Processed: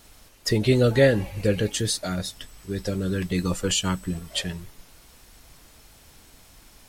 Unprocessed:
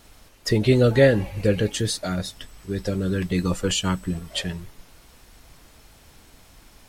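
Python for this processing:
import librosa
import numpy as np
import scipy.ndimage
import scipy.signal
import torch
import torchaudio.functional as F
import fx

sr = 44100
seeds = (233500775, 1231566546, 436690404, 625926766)

y = fx.high_shelf(x, sr, hz=4100.0, db=5.0)
y = y * 10.0 ** (-2.0 / 20.0)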